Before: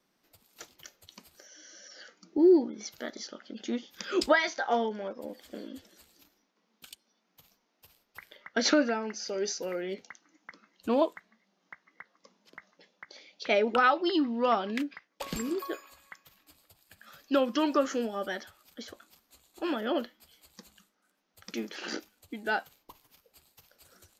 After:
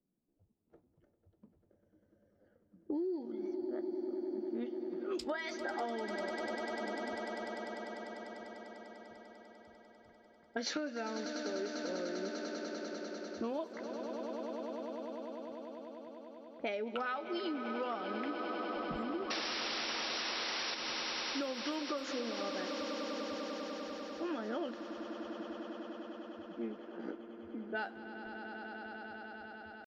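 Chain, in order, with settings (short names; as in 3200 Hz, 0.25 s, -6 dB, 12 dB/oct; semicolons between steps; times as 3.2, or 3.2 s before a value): tempo 0.81×; low-pass opened by the level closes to 300 Hz, open at -22 dBFS; painted sound noise, 19.3–20.75, 350–5800 Hz -27 dBFS; swelling echo 99 ms, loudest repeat 8, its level -16 dB; compressor 12:1, threshold -30 dBFS, peak gain reduction 14 dB; gain -4 dB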